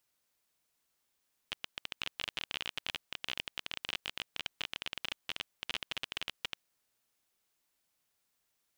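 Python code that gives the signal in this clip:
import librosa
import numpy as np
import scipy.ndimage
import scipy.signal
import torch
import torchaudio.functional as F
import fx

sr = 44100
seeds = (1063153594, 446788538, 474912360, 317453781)

y = fx.geiger_clicks(sr, seeds[0], length_s=5.07, per_s=24.0, level_db=-18.5)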